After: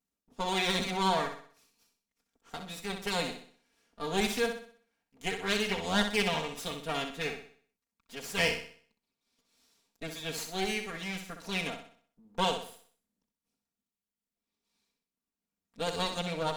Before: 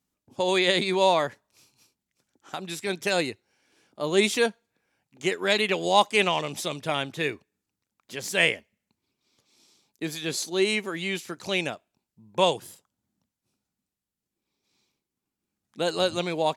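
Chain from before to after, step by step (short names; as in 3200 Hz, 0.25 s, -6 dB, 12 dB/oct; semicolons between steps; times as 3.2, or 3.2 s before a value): minimum comb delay 4.3 ms; flutter echo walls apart 10.8 m, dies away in 0.5 s; gain -7 dB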